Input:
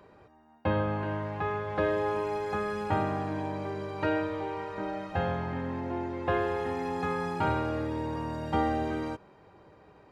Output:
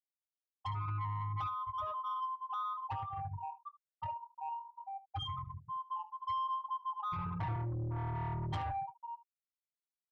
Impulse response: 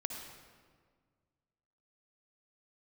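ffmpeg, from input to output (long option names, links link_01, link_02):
-filter_complex "[0:a]bandreject=frequency=75.93:width_type=h:width=4,bandreject=frequency=151.86:width_type=h:width=4,bandreject=frequency=227.79:width_type=h:width=4,bandreject=frequency=303.72:width_type=h:width=4,bandreject=frequency=379.65:width_type=h:width=4,bandreject=frequency=455.58:width_type=h:width=4,bandreject=frequency=531.51:width_type=h:width=4,bandreject=frequency=607.44:width_type=h:width=4,bandreject=frequency=683.37:width_type=h:width=4,bandreject=frequency=759.3:width_type=h:width=4,bandreject=frequency=835.23:width_type=h:width=4,bandreject=frequency=911.16:width_type=h:width=4,bandreject=frequency=987.09:width_type=h:width=4,bandreject=frequency=1063.02:width_type=h:width=4,bandreject=frequency=1138.95:width_type=h:width=4,bandreject=frequency=1214.88:width_type=h:width=4,bandreject=frequency=1290.81:width_type=h:width=4,bandreject=frequency=1366.74:width_type=h:width=4,asplit=2[link_01][link_02];[link_02]asoftclip=type=hard:threshold=-27.5dB,volume=-6.5dB[link_03];[link_01][link_03]amix=inputs=2:normalize=0,firequalizer=gain_entry='entry(110,0);entry(150,-6);entry(230,-23);entry(1100,7);entry(2000,-27);entry(3000,10);entry(8000,13)':delay=0.05:min_phase=1,asettb=1/sr,asplit=3[link_04][link_05][link_06];[link_04]atrim=end=0.884[link_07];[link_05]atrim=start=0.88:end=1.5,asetpts=PTS-STARTPTS,afade=type=in:duration=0.004:curve=qsin,afade=type=out:start_time=0.616:duration=0.004:curve=qsin,acontrast=41[link_08];[link_06]atrim=start=1.496[link_09];[link_07][link_08]acrossfade=duration=0.004:curve1=hsin:curve2=qsin[link_10];[link_10][link_09]acrossfade=duration=0.004:curve1=qsin:curve2=hsin,aecho=1:1:6.6:0.48,acompressor=threshold=-27dB:ratio=10,asettb=1/sr,asplit=3[link_11][link_12][link_13];[link_11]atrim=end=7.124[link_14];[link_12]atrim=start=7.12:end=8.72,asetpts=PTS-STARTPTS,afade=type=in:duration=0.004:curve=qsin,afade=type=out:start_time=1.596:duration=0.004:curve=qsin,equalizer=frequency=74:width=0.35:gain=14.5[link_15];[link_13]atrim=start=8.716[link_16];[link_14][link_15]acrossfade=duration=0.004:curve1=hsin:curve2=qsin[link_17];[link_17][link_16]acrossfade=duration=0.004:curve1=qsin:curve2=hsin,afftfilt=real='re*gte(hypot(re,im),0.141)':imag='im*gte(hypot(re,im),0.141)':win_size=1024:overlap=0.75,asoftclip=type=tanh:threshold=-30dB,alimiter=level_in=9.5dB:limit=-24dB:level=0:latency=1,volume=-9.5dB,aecho=1:1:20|74:0.211|0.133"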